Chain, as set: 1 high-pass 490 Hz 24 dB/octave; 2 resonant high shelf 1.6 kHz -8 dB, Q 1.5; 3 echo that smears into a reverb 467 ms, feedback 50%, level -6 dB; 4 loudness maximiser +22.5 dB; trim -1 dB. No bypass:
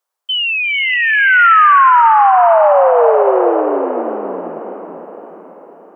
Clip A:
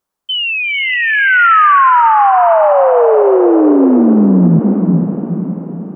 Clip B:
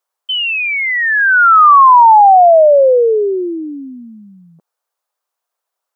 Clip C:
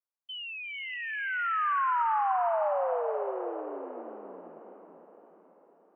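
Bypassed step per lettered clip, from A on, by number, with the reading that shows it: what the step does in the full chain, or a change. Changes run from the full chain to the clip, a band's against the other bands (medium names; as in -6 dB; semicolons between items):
1, 250 Hz band +16.0 dB; 3, momentary loudness spread change -3 LU; 4, crest factor change +5.5 dB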